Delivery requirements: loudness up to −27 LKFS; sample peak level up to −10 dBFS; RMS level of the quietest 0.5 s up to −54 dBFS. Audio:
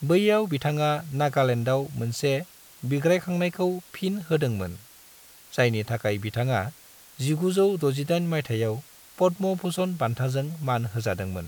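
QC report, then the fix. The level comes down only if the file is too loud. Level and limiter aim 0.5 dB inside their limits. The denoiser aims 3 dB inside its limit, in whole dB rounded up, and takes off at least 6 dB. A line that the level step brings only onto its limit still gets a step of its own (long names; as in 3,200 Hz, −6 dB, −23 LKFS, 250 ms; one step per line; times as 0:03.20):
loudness −26.0 LKFS: out of spec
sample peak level −8.5 dBFS: out of spec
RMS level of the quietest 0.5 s −51 dBFS: out of spec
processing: broadband denoise 6 dB, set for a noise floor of −51 dBFS
level −1.5 dB
brickwall limiter −10.5 dBFS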